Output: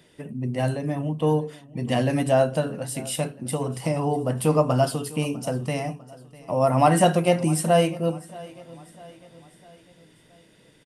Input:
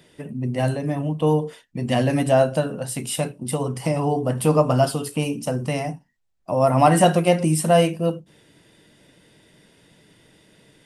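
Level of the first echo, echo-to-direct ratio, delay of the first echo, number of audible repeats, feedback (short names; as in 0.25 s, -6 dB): -20.5 dB, -19.5 dB, 0.65 s, 3, 49%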